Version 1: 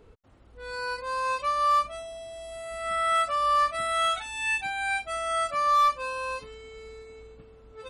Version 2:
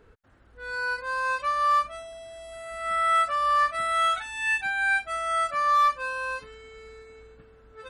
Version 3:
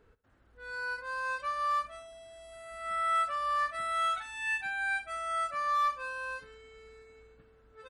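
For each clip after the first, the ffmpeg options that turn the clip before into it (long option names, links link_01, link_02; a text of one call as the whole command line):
ffmpeg -i in.wav -af "equalizer=frequency=1600:width=2.7:gain=11,volume=-2.5dB" out.wav
ffmpeg -i in.wav -af "aecho=1:1:66|132|198:0.126|0.0529|0.0222,volume=-7.5dB" out.wav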